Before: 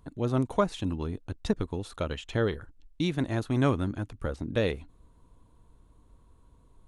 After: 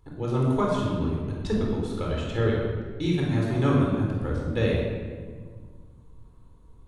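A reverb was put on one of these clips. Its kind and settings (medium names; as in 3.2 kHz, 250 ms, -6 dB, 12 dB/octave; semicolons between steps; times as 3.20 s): simulated room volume 1900 m³, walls mixed, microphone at 4.1 m; trim -4.5 dB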